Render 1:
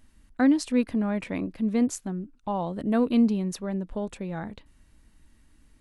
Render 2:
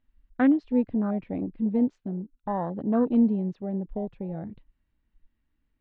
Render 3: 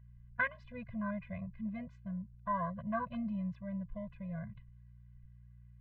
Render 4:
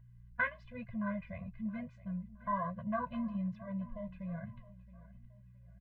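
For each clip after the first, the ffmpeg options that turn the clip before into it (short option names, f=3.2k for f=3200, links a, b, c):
-af "afwtdn=0.0282,lowpass=f=3.6k:w=0.5412,lowpass=f=3.6k:w=1.3066"
-af "aeval=exprs='val(0)+0.00251*(sin(2*PI*60*n/s)+sin(2*PI*2*60*n/s)/2+sin(2*PI*3*60*n/s)/3+sin(2*PI*4*60*n/s)/4+sin(2*PI*5*60*n/s)/5)':c=same,equalizer=f=125:t=o:w=1:g=8,equalizer=f=250:t=o:w=1:g=-10,equalizer=f=500:t=o:w=1:g=-9,equalizer=f=1k:t=o:w=1:g=9,equalizer=f=2k:t=o:w=1:g=11,afftfilt=real='re*eq(mod(floor(b*sr/1024/240),2),0)':imag='im*eq(mod(floor(b*sr/1024/240),2),0)':win_size=1024:overlap=0.75,volume=-5dB"
-af "flanger=delay=7.2:depth=6.8:regen=-46:speed=1.1:shape=triangular,aecho=1:1:669|1338|2007:0.112|0.0482|0.0207,volume=4dB"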